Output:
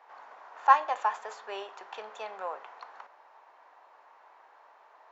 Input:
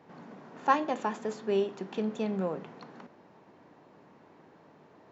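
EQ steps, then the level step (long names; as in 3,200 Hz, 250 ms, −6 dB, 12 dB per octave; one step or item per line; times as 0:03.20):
high-pass filter 880 Hz 24 dB per octave
tilt shelving filter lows +8.5 dB, about 1,200 Hz
+6.0 dB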